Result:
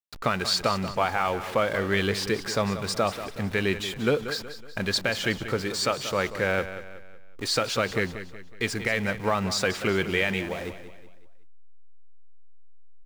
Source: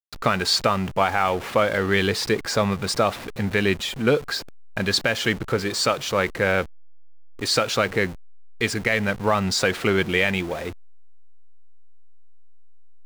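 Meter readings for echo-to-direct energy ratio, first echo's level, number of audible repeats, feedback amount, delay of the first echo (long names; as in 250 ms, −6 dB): −11.0 dB, −12.0 dB, 4, 42%, 185 ms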